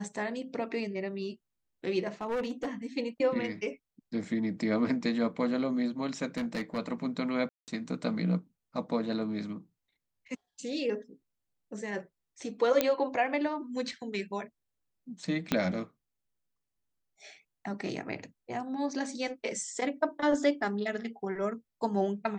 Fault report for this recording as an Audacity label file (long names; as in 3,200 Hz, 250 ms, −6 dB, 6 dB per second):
2.210000	2.860000	clipping −28.5 dBFS
6.370000	6.790000	clipping −28.5 dBFS
7.490000	7.680000	drop-out 188 ms
12.810000	12.810000	click −10 dBFS
15.520000	15.520000	click −12 dBFS